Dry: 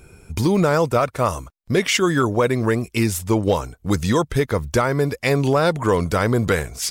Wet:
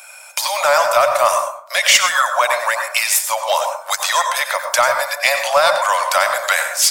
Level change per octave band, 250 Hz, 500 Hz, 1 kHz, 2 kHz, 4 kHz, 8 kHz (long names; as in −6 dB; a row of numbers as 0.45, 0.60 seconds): below −30 dB, +0.5 dB, +8.5 dB, +9.5 dB, +10.5 dB, +11.5 dB